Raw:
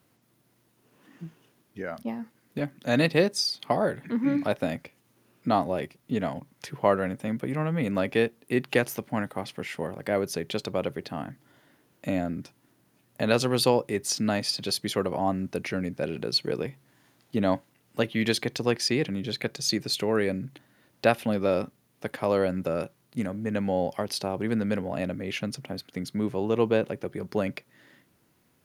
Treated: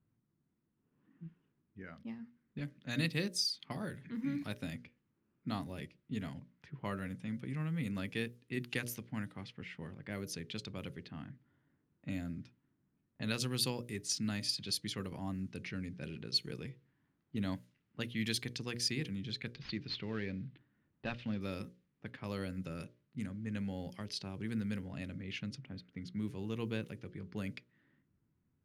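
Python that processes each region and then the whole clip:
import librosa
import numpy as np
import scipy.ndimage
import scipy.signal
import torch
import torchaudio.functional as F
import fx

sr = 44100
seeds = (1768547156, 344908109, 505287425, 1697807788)

y = fx.chain(x, sr, fx.cvsd(bps=64000),
    fx.lowpass(hz=4100.0, slope=24), at=(19.55, 21.41))
y = fx.env_lowpass(y, sr, base_hz=1000.0, full_db=-23.0)
y = fx.tone_stack(y, sr, knobs='6-0-2')
y = fx.hum_notches(y, sr, base_hz=60, count=10)
y = y * librosa.db_to_amplitude(8.5)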